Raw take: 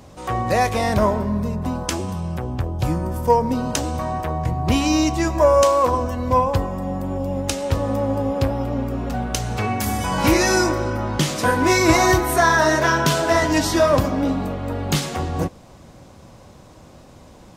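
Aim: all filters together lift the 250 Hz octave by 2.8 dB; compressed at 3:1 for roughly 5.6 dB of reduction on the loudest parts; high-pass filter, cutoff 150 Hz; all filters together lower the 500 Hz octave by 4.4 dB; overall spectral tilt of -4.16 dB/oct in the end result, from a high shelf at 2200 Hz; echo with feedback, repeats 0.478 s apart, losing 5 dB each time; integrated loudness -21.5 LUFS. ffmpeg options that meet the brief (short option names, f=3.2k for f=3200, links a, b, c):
-af "highpass=150,equalizer=f=250:t=o:g=7,equalizer=f=500:t=o:g=-8.5,highshelf=f=2.2k:g=8.5,acompressor=threshold=-19dB:ratio=3,aecho=1:1:478|956|1434|1912|2390|2868|3346:0.562|0.315|0.176|0.0988|0.0553|0.031|0.0173,volume=-0.5dB"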